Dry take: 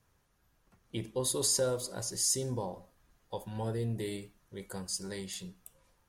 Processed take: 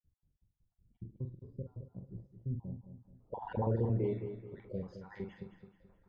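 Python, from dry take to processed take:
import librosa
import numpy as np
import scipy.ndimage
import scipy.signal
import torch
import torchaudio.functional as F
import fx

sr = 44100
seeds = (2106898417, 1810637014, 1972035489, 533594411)

y = fx.spec_dropout(x, sr, seeds[0], share_pct=53)
y = fx.high_shelf(y, sr, hz=6900.0, db=12.0)
y = fx.filter_sweep_lowpass(y, sr, from_hz=160.0, to_hz=1200.0, start_s=2.73, end_s=3.53, q=0.85)
y = fx.air_absorb(y, sr, metres=240.0)
y = fx.doubler(y, sr, ms=44.0, db=-7)
y = fx.echo_feedback(y, sr, ms=215, feedback_pct=38, wet_db=-10)
y = fx.env_flatten(y, sr, amount_pct=50, at=(3.41, 3.92), fade=0.02)
y = y * librosa.db_to_amplitude(3.0)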